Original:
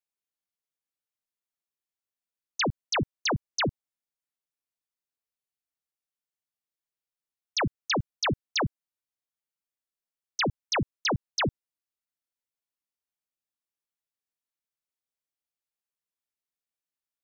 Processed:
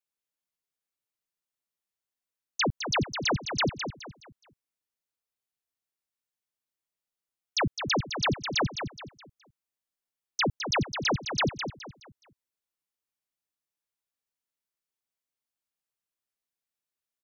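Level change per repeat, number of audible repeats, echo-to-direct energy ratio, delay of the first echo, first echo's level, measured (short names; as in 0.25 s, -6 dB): -9.5 dB, 3, -7.5 dB, 0.21 s, -8.0 dB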